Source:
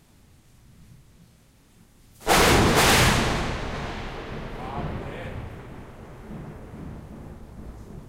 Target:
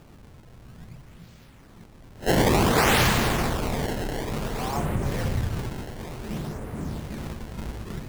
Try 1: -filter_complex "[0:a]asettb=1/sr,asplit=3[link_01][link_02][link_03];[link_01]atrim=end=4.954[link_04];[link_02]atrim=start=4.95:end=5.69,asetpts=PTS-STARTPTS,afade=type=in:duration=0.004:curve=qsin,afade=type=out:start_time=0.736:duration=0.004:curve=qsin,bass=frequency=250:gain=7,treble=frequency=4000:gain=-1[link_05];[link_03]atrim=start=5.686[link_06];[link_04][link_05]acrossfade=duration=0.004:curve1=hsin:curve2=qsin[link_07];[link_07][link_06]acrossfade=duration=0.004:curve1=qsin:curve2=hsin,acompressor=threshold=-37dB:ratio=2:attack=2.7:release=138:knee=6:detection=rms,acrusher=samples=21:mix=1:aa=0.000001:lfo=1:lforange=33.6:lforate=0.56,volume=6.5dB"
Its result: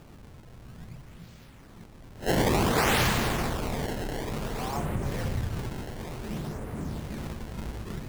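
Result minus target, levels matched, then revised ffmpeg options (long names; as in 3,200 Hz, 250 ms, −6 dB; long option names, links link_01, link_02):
downward compressor: peak gain reduction +4 dB
-filter_complex "[0:a]asettb=1/sr,asplit=3[link_01][link_02][link_03];[link_01]atrim=end=4.954[link_04];[link_02]atrim=start=4.95:end=5.69,asetpts=PTS-STARTPTS,afade=type=in:duration=0.004:curve=qsin,afade=type=out:start_time=0.736:duration=0.004:curve=qsin,bass=frequency=250:gain=7,treble=frequency=4000:gain=-1[link_05];[link_03]atrim=start=5.686[link_06];[link_04][link_05]acrossfade=duration=0.004:curve1=hsin:curve2=qsin[link_07];[link_07][link_06]acrossfade=duration=0.004:curve1=qsin:curve2=hsin,acompressor=threshold=-29dB:ratio=2:attack=2.7:release=138:knee=6:detection=rms,acrusher=samples=21:mix=1:aa=0.000001:lfo=1:lforange=33.6:lforate=0.56,volume=6.5dB"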